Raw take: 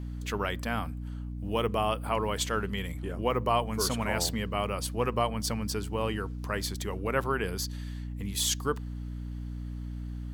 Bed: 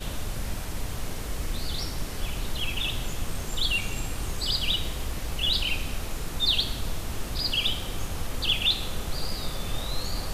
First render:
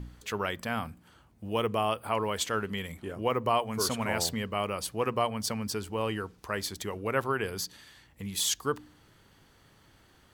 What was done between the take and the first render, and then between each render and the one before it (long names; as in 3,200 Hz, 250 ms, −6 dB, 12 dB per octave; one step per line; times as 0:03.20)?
hum removal 60 Hz, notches 5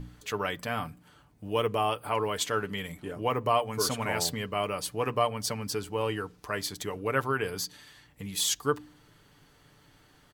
comb filter 6.8 ms, depth 45%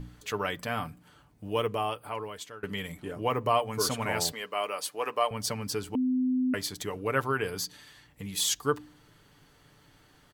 0:01.45–0:02.63: fade out, to −20.5 dB
0:04.32–0:05.31: high-pass filter 470 Hz
0:05.95–0:06.54: beep over 255 Hz −23.5 dBFS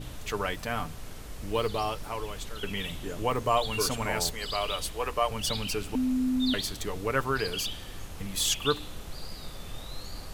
mix in bed −9.5 dB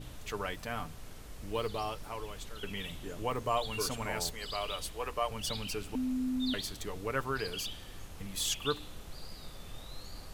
level −6 dB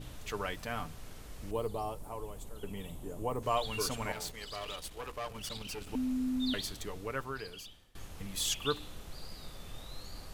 0:01.51–0:03.43: flat-topped bell 2,800 Hz −11.5 dB 2.5 octaves
0:04.12–0:05.87: tube saturation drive 34 dB, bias 0.7
0:06.67–0:07.95: fade out, to −22.5 dB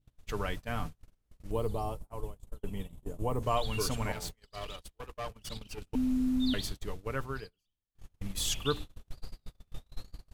noise gate −40 dBFS, range −37 dB
low-shelf EQ 210 Hz +9 dB